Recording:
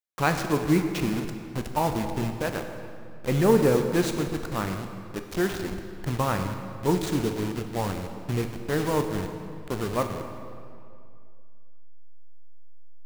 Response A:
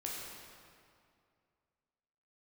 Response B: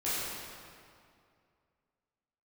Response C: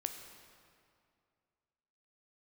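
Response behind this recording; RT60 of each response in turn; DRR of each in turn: C; 2.3, 2.3, 2.3 seconds; −4.0, −12.0, 5.5 decibels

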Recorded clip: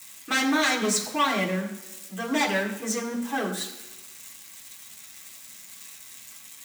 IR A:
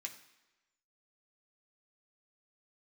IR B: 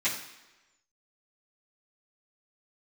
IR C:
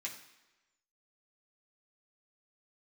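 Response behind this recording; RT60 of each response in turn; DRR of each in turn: C; 1.1, 1.1, 1.1 seconds; 1.0, −13.5, −4.0 decibels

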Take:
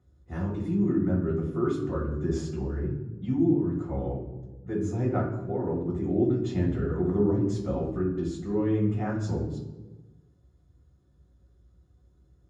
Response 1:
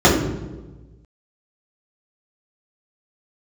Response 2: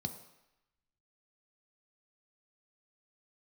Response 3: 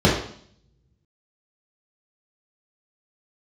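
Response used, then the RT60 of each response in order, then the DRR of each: 1; 1.2, 0.90, 0.60 seconds; −8.0, 6.5, −7.0 decibels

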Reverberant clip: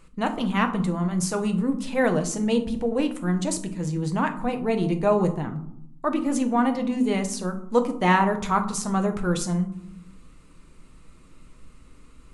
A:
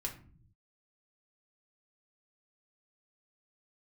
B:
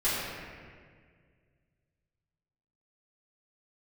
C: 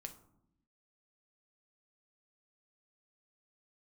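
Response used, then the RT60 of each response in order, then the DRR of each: C; 0.50, 1.9, 0.75 seconds; −0.5, −12.5, 5.0 decibels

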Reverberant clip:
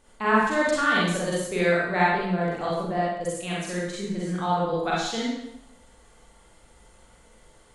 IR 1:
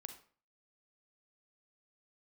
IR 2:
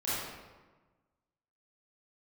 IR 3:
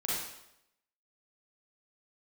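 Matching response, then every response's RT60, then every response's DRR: 3; 0.45, 1.3, 0.80 seconds; 6.5, −11.5, −7.0 decibels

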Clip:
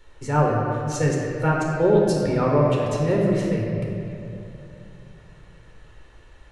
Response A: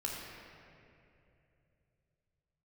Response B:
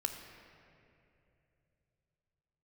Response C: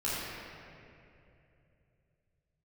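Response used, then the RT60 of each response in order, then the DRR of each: A; 2.8, 2.8, 2.8 seconds; −2.5, 5.0, −10.0 decibels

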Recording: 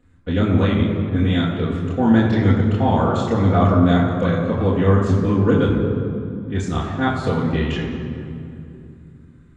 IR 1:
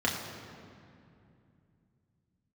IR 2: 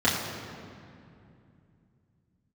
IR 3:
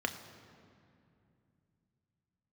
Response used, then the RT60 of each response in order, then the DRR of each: 2; 2.6, 2.6, 2.6 seconds; −3.5, −9.0, 5.5 decibels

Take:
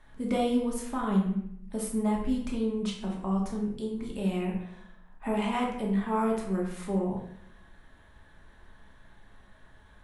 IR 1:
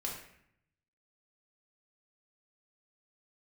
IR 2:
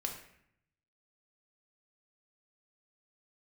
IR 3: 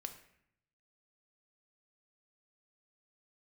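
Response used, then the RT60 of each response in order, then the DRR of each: 1; 0.70, 0.70, 0.70 seconds; −2.5, 2.0, 6.5 decibels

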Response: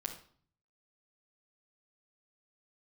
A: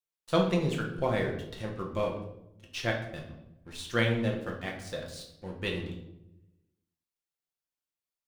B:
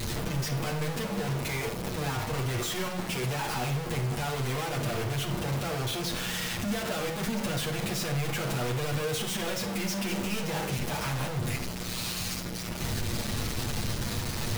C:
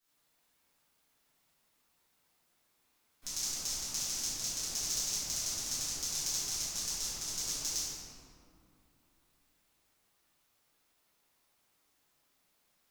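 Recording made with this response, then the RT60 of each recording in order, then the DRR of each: B; 0.85, 0.50, 2.7 seconds; −0.5, −2.0, −15.5 decibels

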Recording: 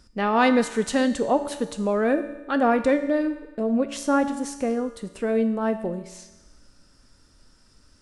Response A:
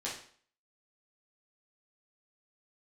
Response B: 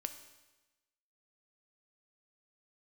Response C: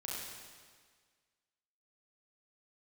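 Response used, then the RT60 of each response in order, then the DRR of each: B; 0.50, 1.1, 1.7 seconds; −7.0, 8.0, −5.5 decibels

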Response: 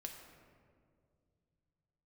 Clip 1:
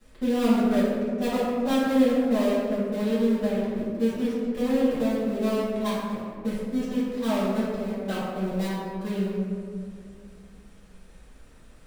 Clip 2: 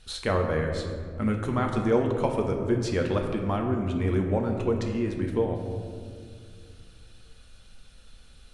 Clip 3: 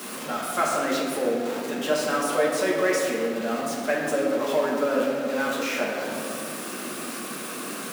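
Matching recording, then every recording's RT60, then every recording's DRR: 2; 2.1, 2.2, 2.1 seconds; −14.0, 2.0, −4.0 decibels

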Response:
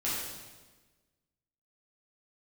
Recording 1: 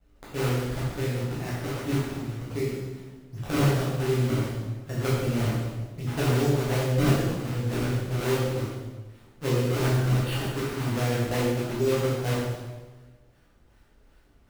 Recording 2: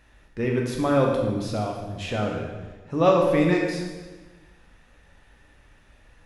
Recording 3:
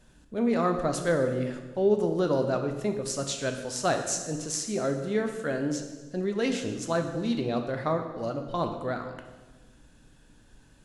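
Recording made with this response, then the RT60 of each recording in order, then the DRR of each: 1; 1.3, 1.3, 1.3 seconds; −9.0, −1.0, 4.5 decibels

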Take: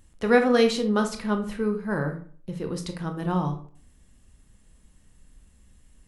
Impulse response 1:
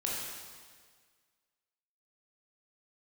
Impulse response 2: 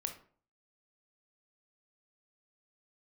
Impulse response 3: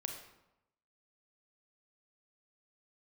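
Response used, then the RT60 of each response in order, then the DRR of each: 2; 1.7, 0.50, 0.90 seconds; −5.0, 5.0, 3.0 decibels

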